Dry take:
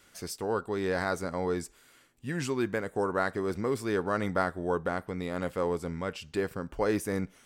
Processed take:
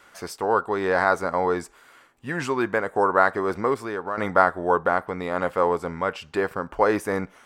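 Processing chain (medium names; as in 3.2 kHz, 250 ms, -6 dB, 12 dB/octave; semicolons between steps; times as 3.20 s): peaking EQ 1 kHz +14.5 dB 2.5 oct; 3.74–4.18 s: compression 2:1, threshold -32 dBFS, peak gain reduction 11 dB; trim -1 dB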